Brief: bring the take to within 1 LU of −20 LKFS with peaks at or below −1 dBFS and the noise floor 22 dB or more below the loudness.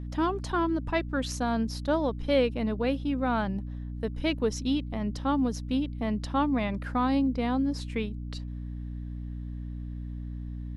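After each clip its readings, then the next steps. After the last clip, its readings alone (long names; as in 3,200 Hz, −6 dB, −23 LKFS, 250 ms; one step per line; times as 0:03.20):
mains hum 60 Hz; hum harmonics up to 300 Hz; level of the hum −34 dBFS; integrated loudness −30.0 LKFS; sample peak −12.5 dBFS; target loudness −20.0 LKFS
→ mains-hum notches 60/120/180/240/300 Hz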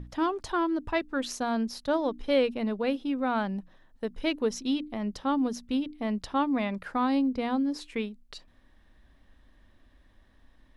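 mains hum none found; integrated loudness −29.5 LKFS; sample peak −13.0 dBFS; target loudness −20.0 LKFS
→ level +9.5 dB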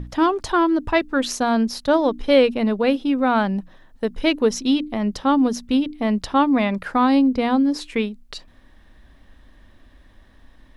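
integrated loudness −20.0 LKFS; sample peak −3.5 dBFS; background noise floor −51 dBFS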